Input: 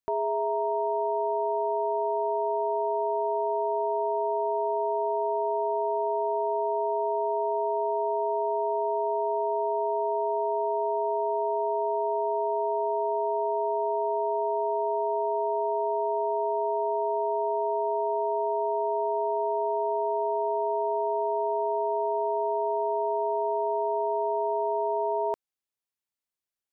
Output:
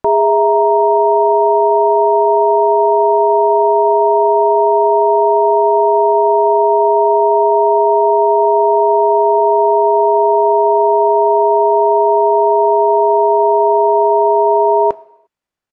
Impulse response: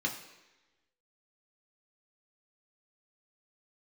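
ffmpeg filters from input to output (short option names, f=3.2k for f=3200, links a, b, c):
-filter_complex "[0:a]acontrast=67,atempo=1.7,aemphasis=mode=reproduction:type=75fm,asplit=2[a][b];[1:a]atrim=start_sample=2205,afade=t=out:st=0.41:d=0.01,atrim=end_sample=18522,lowshelf=f=310:g=-11.5[c];[b][c]afir=irnorm=-1:irlink=0,volume=-14.5dB[d];[a][d]amix=inputs=2:normalize=0,volume=8.5dB"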